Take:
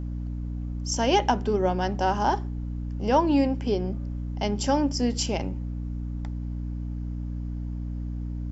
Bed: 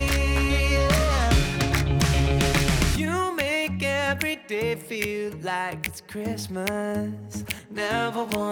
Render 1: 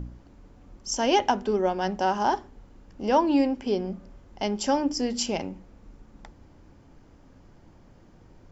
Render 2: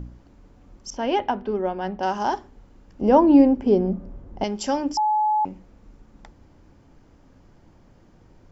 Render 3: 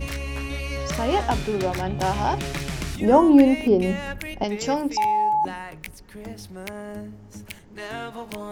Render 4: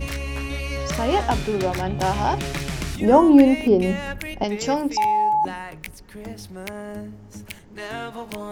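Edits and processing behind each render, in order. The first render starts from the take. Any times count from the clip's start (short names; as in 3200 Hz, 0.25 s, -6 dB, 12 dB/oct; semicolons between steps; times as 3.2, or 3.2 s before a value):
de-hum 60 Hz, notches 5
0.9–2.03 air absorption 280 m; 3.01–4.44 tilt shelf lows +9.5 dB, about 1400 Hz; 4.97–5.45 bleep 853 Hz -17.5 dBFS
add bed -8 dB
gain +1.5 dB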